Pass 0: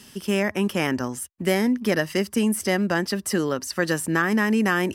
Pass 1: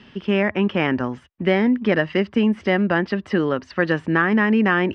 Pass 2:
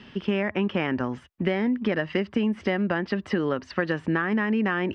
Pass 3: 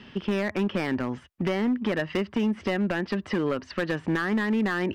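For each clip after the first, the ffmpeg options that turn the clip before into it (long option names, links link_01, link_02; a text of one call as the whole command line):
ffmpeg -i in.wav -af "lowpass=frequency=3200:width=0.5412,lowpass=frequency=3200:width=1.3066,volume=3.5dB" out.wav
ffmpeg -i in.wav -af "acompressor=threshold=-21dB:ratio=6" out.wav
ffmpeg -i in.wav -af "asoftclip=type=hard:threshold=-20dB" out.wav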